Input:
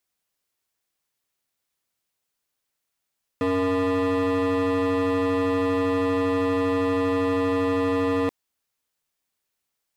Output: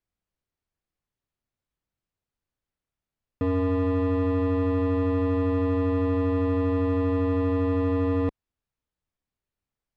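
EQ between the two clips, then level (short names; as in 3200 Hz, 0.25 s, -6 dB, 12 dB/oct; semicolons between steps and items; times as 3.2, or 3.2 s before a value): RIAA curve playback; -6.5 dB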